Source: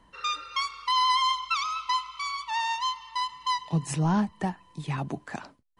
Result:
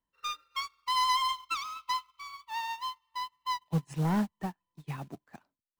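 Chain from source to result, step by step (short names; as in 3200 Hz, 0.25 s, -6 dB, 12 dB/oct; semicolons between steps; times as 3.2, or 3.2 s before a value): high shelf 9300 Hz +2.5 dB, from 2.19 s -11.5 dB; short-mantissa float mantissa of 2-bit; soft clip -22.5 dBFS, distortion -15 dB; upward expander 2.5:1, over -46 dBFS; gain +1.5 dB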